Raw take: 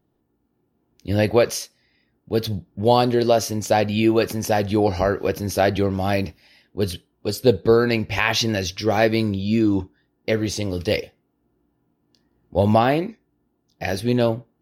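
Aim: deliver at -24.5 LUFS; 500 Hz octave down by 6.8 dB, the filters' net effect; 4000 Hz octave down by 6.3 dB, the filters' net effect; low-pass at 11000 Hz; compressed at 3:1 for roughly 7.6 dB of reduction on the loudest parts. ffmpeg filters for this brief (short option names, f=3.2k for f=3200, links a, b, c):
-af "lowpass=11k,equalizer=f=500:t=o:g=-8.5,equalizer=f=4k:t=o:g=-8,acompressor=threshold=-26dB:ratio=3,volume=6dB"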